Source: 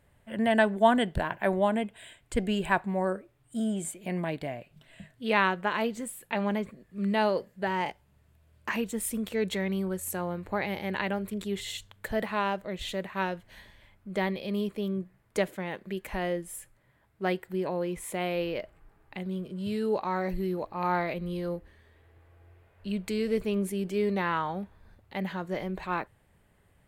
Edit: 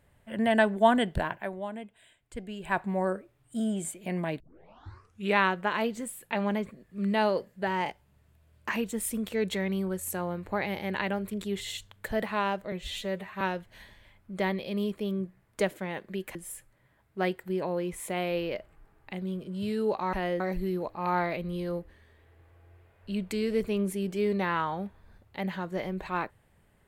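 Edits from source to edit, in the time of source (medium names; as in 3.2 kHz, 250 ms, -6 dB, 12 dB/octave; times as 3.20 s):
1.27–2.83 s: dip -11 dB, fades 0.23 s
4.40 s: tape start 0.98 s
12.72–13.18 s: stretch 1.5×
16.12–16.39 s: move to 20.17 s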